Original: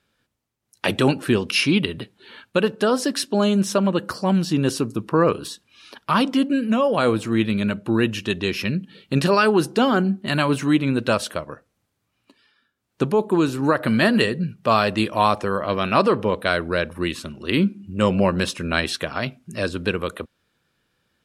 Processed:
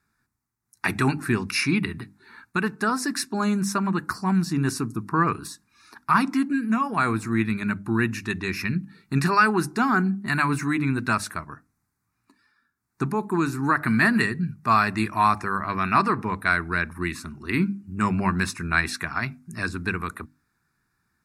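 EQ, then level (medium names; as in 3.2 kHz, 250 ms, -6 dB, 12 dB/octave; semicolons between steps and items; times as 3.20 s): hum notches 50/100/150/200/250/300 Hz; dynamic bell 2.4 kHz, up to +7 dB, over -38 dBFS, Q 1.2; static phaser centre 1.3 kHz, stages 4; 0.0 dB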